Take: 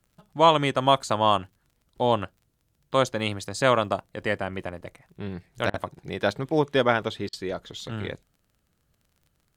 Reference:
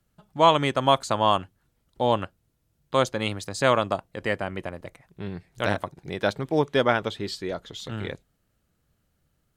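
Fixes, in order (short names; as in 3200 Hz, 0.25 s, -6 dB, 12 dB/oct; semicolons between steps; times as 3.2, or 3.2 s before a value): de-click; interpolate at 5.7/7.29, 39 ms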